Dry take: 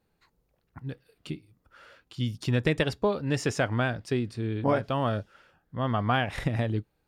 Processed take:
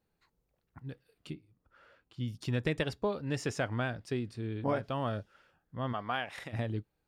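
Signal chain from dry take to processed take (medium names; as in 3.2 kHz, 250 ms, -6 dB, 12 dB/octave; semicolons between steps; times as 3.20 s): 1.33–2.28 s: treble shelf 3.2 kHz -11 dB; 5.92–6.52 s: high-pass 400 Hz -> 900 Hz 6 dB/octave; trim -6.5 dB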